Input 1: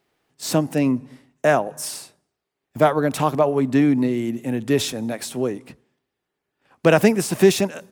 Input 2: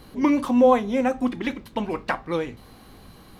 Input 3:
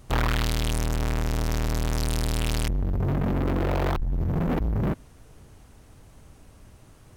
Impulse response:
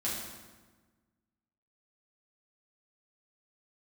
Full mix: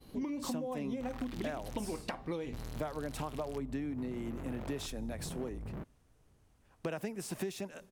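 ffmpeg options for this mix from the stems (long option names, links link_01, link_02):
-filter_complex "[0:a]volume=-13dB[link_01];[1:a]agate=range=-33dB:threshold=-41dB:ratio=3:detection=peak,equalizer=frequency=1400:width=1:gain=-7.5,acompressor=threshold=-26dB:ratio=6,volume=-1dB[link_02];[2:a]adelay=900,volume=-17.5dB,asplit=3[link_03][link_04][link_05];[link_03]atrim=end=2.01,asetpts=PTS-STARTPTS,afade=type=out:start_time=2.006:duration=0.004:curve=hsin[link_06];[link_04]atrim=start=2.01:end=2.53,asetpts=PTS-STARTPTS,volume=0[link_07];[link_05]atrim=start=2.53,asetpts=PTS-STARTPTS,afade=type=in:duration=0.004:curve=hsin[link_08];[link_06][link_07][link_08]concat=n=3:v=0:a=1[link_09];[link_01][link_02][link_09]amix=inputs=3:normalize=0,acompressor=threshold=-34dB:ratio=10"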